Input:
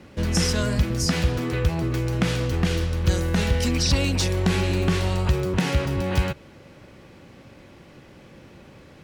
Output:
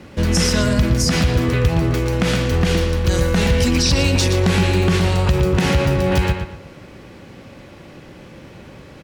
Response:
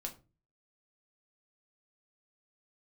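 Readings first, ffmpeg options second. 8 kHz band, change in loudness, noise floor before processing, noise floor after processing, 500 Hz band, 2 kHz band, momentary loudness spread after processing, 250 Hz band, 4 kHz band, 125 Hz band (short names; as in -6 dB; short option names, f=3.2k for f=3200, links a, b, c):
+5.5 dB, +6.0 dB, -48 dBFS, -41 dBFS, +7.5 dB, +6.5 dB, 3 LU, +6.5 dB, +6.0 dB, +5.5 dB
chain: -filter_complex "[0:a]asplit=2[a][b];[b]adelay=117,lowpass=f=3.9k:p=1,volume=-6.5dB,asplit=2[c][d];[d]adelay=117,lowpass=f=3.9k:p=1,volume=0.33,asplit=2[e][f];[f]adelay=117,lowpass=f=3.9k:p=1,volume=0.33,asplit=2[g][h];[h]adelay=117,lowpass=f=3.9k:p=1,volume=0.33[i];[a][c][e][g][i]amix=inputs=5:normalize=0,alimiter=level_in=12dB:limit=-1dB:release=50:level=0:latency=1,volume=-5.5dB"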